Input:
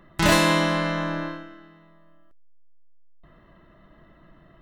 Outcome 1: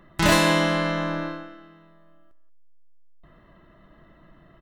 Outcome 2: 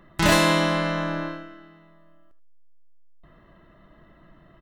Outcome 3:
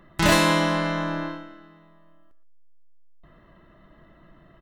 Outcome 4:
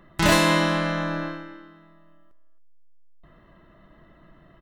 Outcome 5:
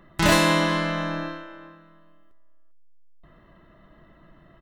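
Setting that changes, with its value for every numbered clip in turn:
speakerphone echo, time: 180 ms, 80 ms, 120 ms, 270 ms, 400 ms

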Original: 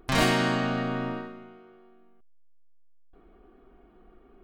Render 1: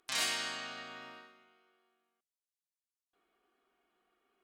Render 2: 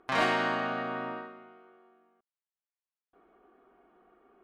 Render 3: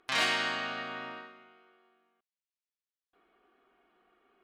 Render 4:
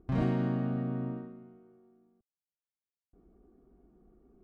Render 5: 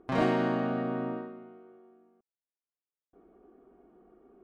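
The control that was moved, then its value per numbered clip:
band-pass filter, frequency: 7.6 kHz, 1.1 kHz, 2.9 kHz, 120 Hz, 410 Hz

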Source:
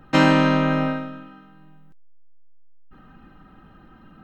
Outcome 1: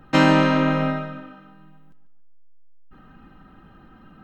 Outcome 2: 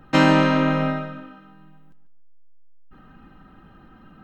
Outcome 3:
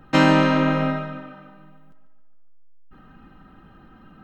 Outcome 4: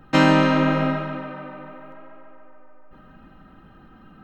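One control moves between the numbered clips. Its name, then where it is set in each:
tape echo, feedback: 38%, 25%, 56%, 83%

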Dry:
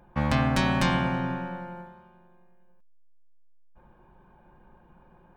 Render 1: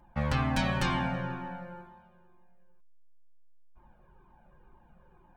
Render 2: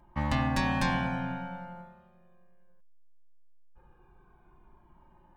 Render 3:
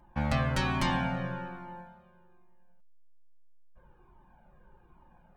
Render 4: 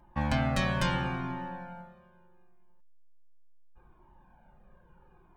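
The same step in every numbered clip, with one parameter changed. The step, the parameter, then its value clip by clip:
Shepard-style flanger, rate: 2.1 Hz, 0.2 Hz, 1.2 Hz, 0.74 Hz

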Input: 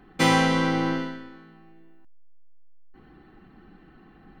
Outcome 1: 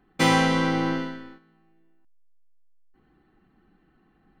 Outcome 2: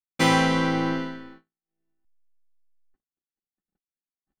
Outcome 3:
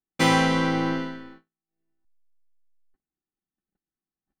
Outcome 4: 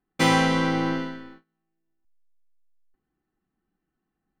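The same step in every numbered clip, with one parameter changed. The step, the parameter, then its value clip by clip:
gate, range: -11 dB, -59 dB, -45 dB, -29 dB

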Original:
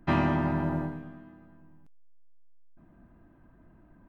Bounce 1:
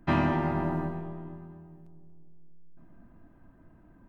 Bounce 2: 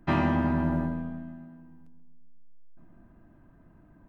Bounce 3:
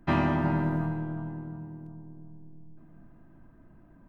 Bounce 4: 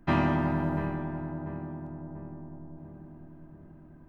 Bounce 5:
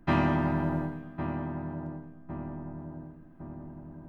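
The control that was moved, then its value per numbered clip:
filtered feedback delay, time: 236 ms, 133 ms, 360 ms, 691 ms, 1107 ms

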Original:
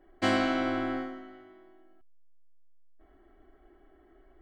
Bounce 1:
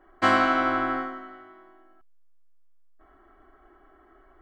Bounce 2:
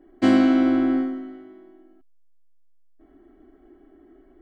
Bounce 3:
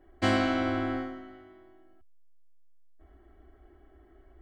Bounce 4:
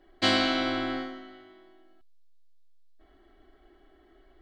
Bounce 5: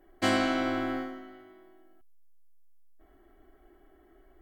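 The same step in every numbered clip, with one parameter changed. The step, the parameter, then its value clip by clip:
peaking EQ, frequency: 1.2 kHz, 270 Hz, 73 Hz, 4 kHz, 15 kHz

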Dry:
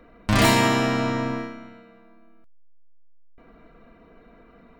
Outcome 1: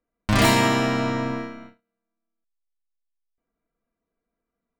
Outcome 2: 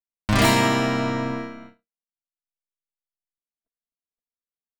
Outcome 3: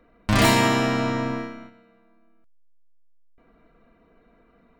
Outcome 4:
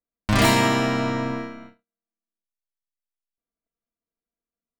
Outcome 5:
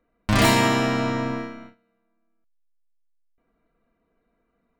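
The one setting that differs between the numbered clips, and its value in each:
gate, range: -32 dB, -60 dB, -7 dB, -45 dB, -20 dB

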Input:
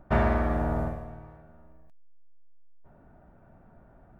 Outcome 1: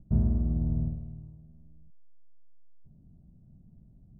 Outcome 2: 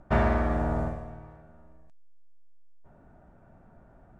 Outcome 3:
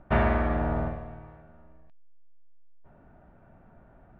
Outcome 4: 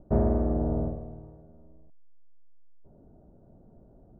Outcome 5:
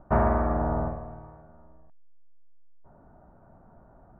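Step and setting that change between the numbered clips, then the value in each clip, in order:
resonant low-pass, frequency: 170 Hz, 7.8 kHz, 3 kHz, 450 Hz, 1.1 kHz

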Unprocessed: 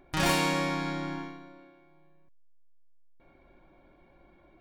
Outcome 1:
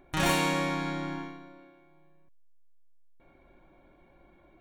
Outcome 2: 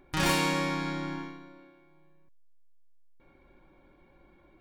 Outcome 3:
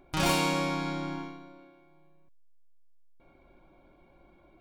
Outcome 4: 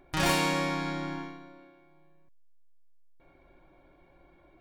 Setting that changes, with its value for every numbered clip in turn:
band-stop, frequency: 4.9 kHz, 670 Hz, 1.8 kHz, 220 Hz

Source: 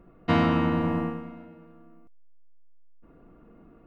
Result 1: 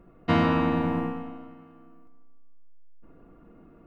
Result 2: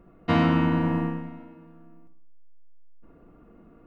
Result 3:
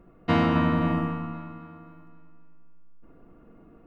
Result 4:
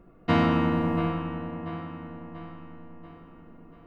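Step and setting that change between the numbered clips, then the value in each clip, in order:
feedback echo behind a low-pass, time: 156 ms, 61 ms, 262 ms, 687 ms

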